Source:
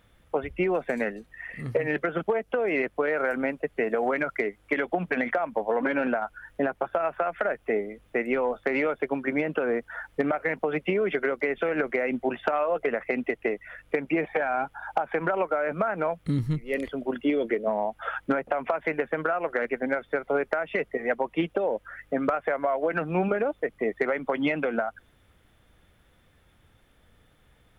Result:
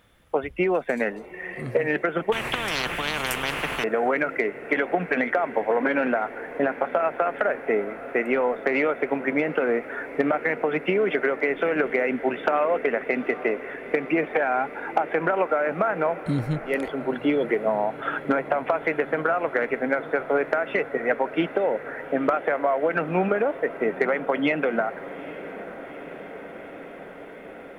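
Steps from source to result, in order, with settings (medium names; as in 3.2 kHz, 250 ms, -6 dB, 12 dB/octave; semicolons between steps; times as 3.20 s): bass shelf 130 Hz -7.5 dB; echo that smears into a reverb 851 ms, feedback 78%, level -16 dB; 2.32–3.84 s: spectrum-flattening compressor 10:1; trim +3.5 dB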